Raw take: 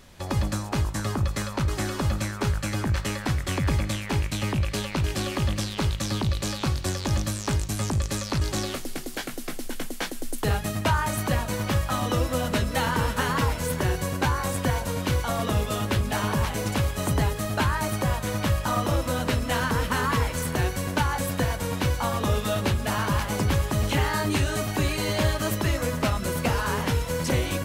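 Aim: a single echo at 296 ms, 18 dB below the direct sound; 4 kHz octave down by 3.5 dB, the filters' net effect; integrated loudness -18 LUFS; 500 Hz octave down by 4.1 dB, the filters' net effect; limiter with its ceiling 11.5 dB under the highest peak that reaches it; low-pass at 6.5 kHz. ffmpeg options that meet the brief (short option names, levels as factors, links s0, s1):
-af "lowpass=6500,equalizer=f=500:t=o:g=-5,equalizer=f=4000:t=o:g=-4,alimiter=limit=0.0631:level=0:latency=1,aecho=1:1:296:0.126,volume=5.62"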